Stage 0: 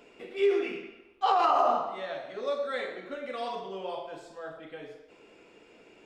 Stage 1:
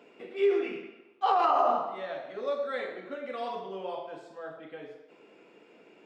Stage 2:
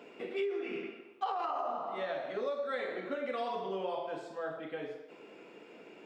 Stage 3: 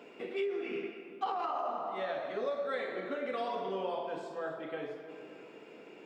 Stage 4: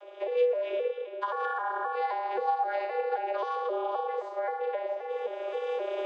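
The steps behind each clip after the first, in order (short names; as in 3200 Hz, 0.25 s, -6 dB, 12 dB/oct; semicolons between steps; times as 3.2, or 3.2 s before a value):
HPF 140 Hz 24 dB/oct; high shelf 4400 Hz -10.5 dB
compressor 16:1, threshold -35 dBFS, peak gain reduction 15.5 dB; gain +3.5 dB
reverb RT60 2.7 s, pre-delay 0.191 s, DRR 11 dB
arpeggiated vocoder bare fifth, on G#3, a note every 0.263 s; recorder AGC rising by 22 dB/s; frequency shift +180 Hz; gain +6 dB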